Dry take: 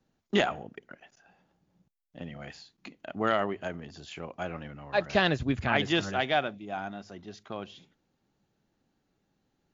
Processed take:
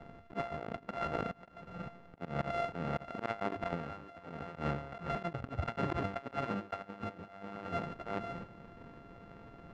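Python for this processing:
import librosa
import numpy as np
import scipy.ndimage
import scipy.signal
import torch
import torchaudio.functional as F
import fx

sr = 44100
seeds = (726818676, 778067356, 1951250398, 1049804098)

p1 = np.r_[np.sort(x[:len(x) // 64 * 64].reshape(-1, 64), axis=1).ravel(), x[len(x) // 64 * 64:]]
p2 = fx.auto_swell(p1, sr, attack_ms=393.0)
p3 = p2 + 10.0 ** (-9.5 / 20.0) * np.pad(p2, (int(542 * sr / 1000.0), 0))[:len(p2)]
p4 = fx.level_steps(p3, sr, step_db=18)
p5 = p3 + (p4 * 10.0 ** (1.0 / 20.0))
p6 = fx.auto_swell(p5, sr, attack_ms=415.0)
p7 = fx.over_compress(p6, sr, threshold_db=-52.0, ratio=-0.5)
p8 = scipy.signal.sosfilt(scipy.signal.butter(2, 1900.0, 'lowpass', fs=sr, output='sos'), p7)
y = p8 * 10.0 ** (15.5 / 20.0)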